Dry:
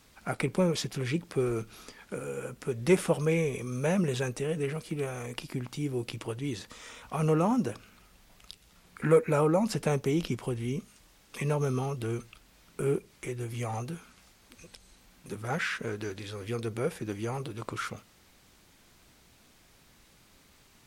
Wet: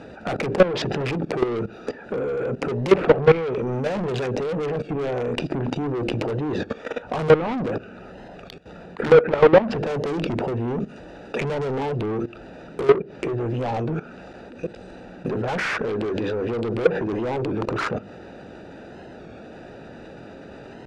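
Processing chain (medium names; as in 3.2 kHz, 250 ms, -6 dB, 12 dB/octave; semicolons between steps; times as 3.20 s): local Wiener filter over 41 samples; low-pass 7.8 kHz 12 dB/octave; overdrive pedal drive 37 dB, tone 2.5 kHz, clips at -11.5 dBFS; peaking EQ 550 Hz +2 dB 1.2 oct; hum notches 50/100/150/200/250/300/350/400 Hz; level held to a coarse grid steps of 16 dB; low-pass that closes with the level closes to 2.4 kHz, closed at -20 dBFS; warped record 33 1/3 rpm, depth 100 cents; trim +7 dB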